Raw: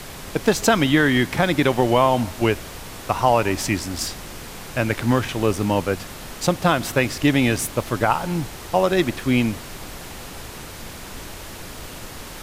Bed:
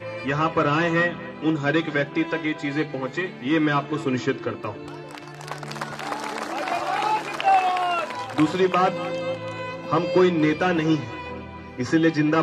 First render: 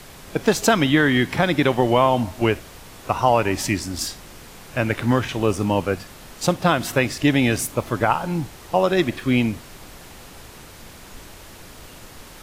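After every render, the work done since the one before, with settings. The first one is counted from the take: noise print and reduce 6 dB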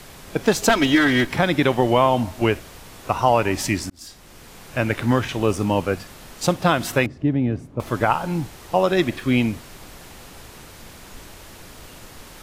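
0.69–1.30 s: comb filter that takes the minimum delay 3.1 ms; 3.90–4.85 s: fade in equal-power; 7.06–7.80 s: band-pass filter 140 Hz, Q 0.58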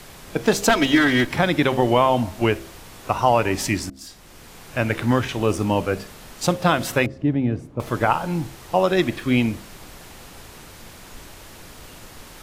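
de-hum 66.6 Hz, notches 10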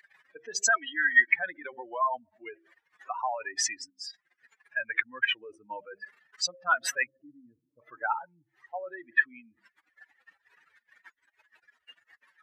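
spectral contrast enhancement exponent 3.3; resonant high-pass 1.8 kHz, resonance Q 7.4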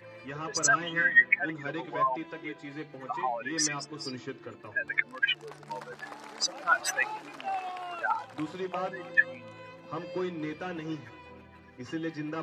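add bed -15.5 dB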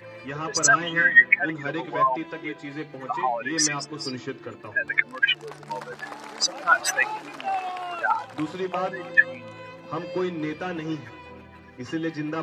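trim +6 dB

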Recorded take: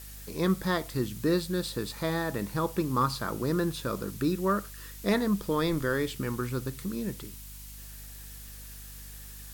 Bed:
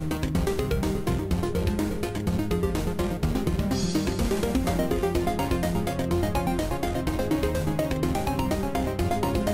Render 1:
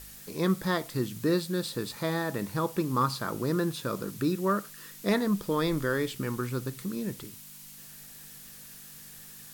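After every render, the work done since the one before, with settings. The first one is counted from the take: de-hum 50 Hz, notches 2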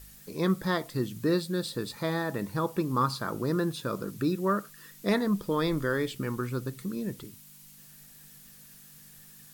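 noise reduction 6 dB, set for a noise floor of -48 dBFS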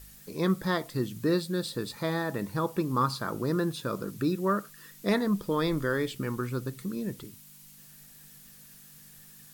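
no audible change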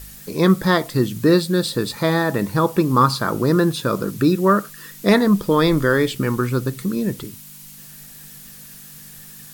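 trim +11.5 dB

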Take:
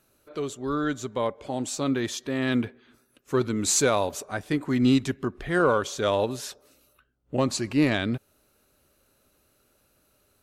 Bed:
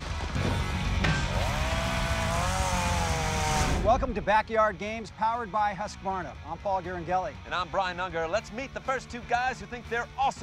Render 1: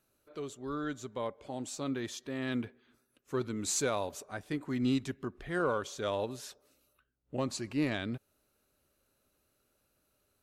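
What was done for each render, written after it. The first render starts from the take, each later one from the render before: trim -9.5 dB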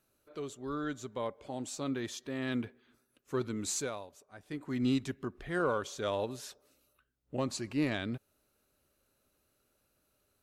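3.57–4.81 s: dip -14 dB, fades 0.50 s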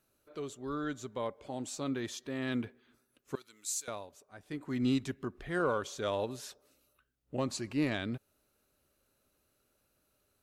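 3.35–3.88 s: differentiator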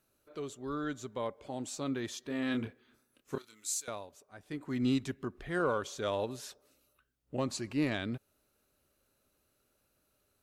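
2.27–3.78 s: doubling 27 ms -5 dB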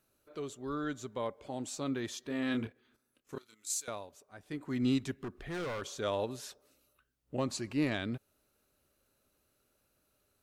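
2.67–3.70 s: level held to a coarse grid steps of 10 dB; 5.12–5.82 s: hard clipper -35.5 dBFS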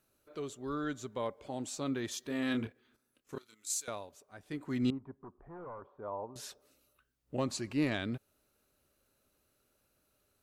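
2.11–2.53 s: treble shelf 7.4 kHz +8 dB; 4.90–6.36 s: four-pole ladder low-pass 1.1 kHz, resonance 60%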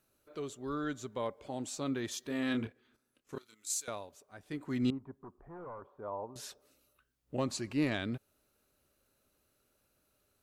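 2.42–3.34 s: treble shelf 12 kHz -6 dB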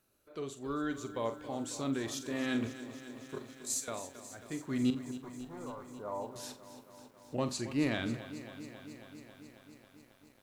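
on a send: flutter echo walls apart 7.5 m, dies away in 0.25 s; on the sum: bit-crushed delay 272 ms, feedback 80%, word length 10-bit, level -13.5 dB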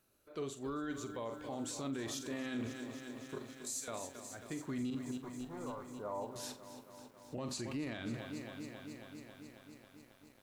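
peak limiter -31.5 dBFS, peak gain reduction 11.5 dB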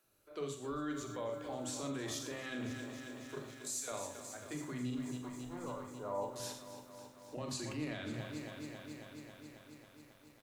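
bands offset in time highs, lows 40 ms, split 240 Hz; gated-style reverb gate 140 ms flat, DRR 5.5 dB

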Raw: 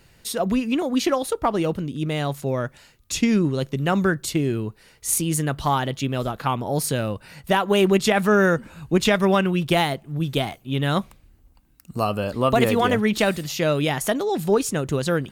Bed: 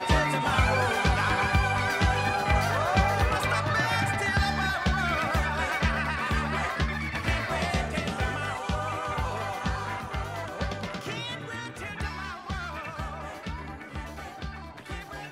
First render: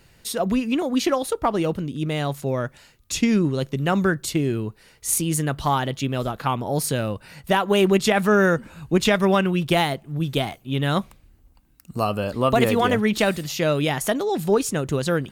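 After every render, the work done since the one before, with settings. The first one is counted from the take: no audible change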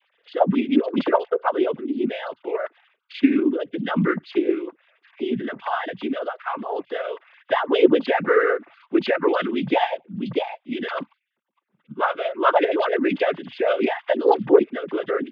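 formants replaced by sine waves; noise-vocoded speech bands 16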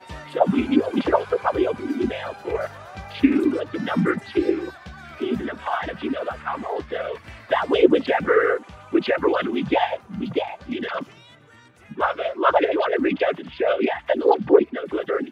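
add bed -14 dB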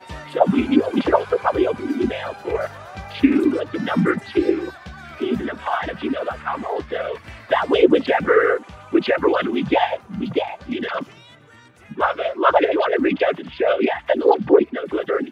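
trim +2.5 dB; peak limiter -2 dBFS, peak gain reduction 3 dB

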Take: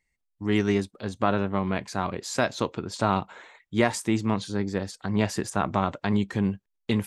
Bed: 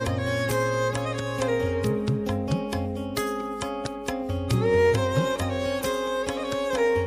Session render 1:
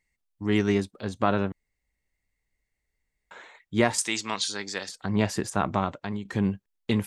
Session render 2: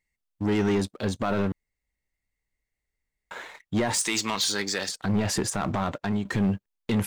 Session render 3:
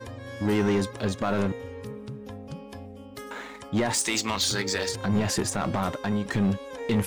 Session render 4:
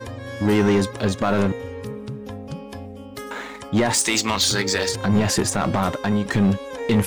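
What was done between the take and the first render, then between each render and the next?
1.52–3.31 s: room tone; 3.98–4.89 s: frequency weighting ITU-R 468; 5.70–6.25 s: fade out, to -13 dB
peak limiter -17.5 dBFS, peak gain reduction 10 dB; waveshaping leveller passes 2
add bed -13 dB
trim +6 dB

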